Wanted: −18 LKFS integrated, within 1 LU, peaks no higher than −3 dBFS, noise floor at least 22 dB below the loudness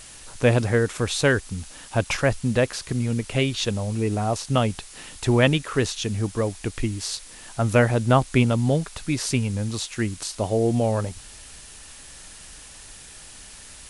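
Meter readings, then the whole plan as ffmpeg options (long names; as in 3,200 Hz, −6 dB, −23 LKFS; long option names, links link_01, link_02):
background noise floor −44 dBFS; target noise floor −46 dBFS; integrated loudness −23.5 LKFS; sample peak −5.5 dBFS; target loudness −18.0 LKFS
→ -af "afftdn=noise_reduction=6:noise_floor=-44"
-af "volume=5.5dB,alimiter=limit=-3dB:level=0:latency=1"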